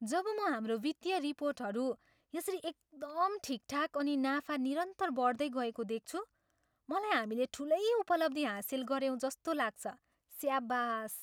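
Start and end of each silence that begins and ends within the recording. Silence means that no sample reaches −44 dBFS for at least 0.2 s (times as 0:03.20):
0:01.93–0:02.34
0:02.71–0:03.02
0:06.23–0:06.89
0:09.93–0:10.34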